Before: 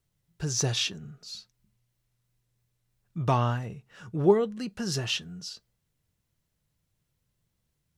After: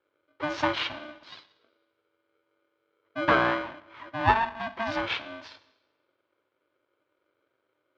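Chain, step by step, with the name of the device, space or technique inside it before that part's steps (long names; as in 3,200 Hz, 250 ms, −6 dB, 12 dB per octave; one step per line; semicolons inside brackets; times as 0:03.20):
0:03.66–0:04.61: tilt shelving filter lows −4 dB, about 1,300 Hz
coupled-rooms reverb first 0.87 s, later 2.2 s, from −25 dB, DRR 11.5 dB
ring modulator pedal into a guitar cabinet (ring modulator with a square carrier 450 Hz; loudspeaker in its box 83–3,500 Hz, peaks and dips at 100 Hz +6 dB, 210 Hz −7 dB, 1,000 Hz +9 dB, 1,600 Hz +6 dB)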